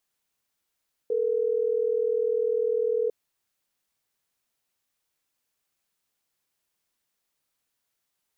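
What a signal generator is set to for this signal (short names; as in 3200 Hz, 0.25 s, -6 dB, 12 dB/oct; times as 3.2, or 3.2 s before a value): call progress tone ringback tone, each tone -25 dBFS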